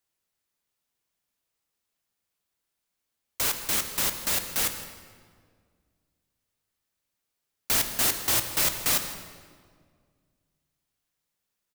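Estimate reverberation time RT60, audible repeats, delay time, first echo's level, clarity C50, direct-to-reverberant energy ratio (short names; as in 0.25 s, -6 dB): 1.9 s, 1, 0.161 s, -18.0 dB, 8.5 dB, 6.5 dB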